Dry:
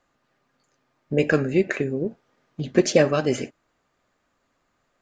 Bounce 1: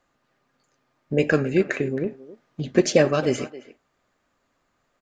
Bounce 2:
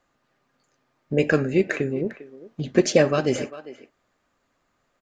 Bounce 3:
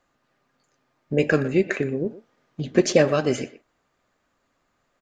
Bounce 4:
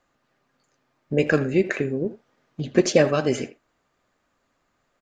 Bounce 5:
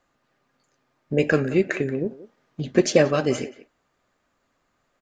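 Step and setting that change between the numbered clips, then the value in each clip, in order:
speakerphone echo, time: 270 ms, 400 ms, 120 ms, 80 ms, 180 ms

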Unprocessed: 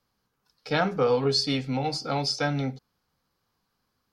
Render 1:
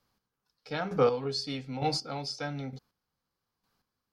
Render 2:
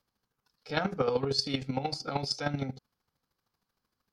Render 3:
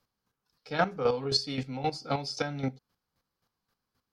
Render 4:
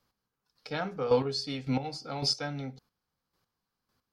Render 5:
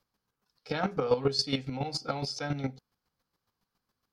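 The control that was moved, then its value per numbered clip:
square tremolo, rate: 1.1 Hz, 13 Hz, 3.8 Hz, 1.8 Hz, 7.2 Hz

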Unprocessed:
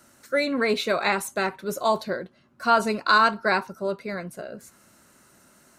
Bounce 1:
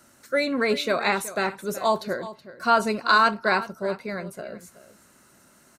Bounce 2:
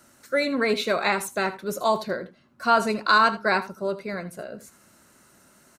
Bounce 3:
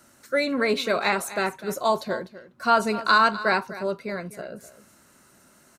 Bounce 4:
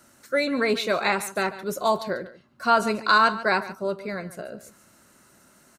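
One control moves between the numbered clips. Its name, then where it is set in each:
delay, time: 374 ms, 79 ms, 251 ms, 143 ms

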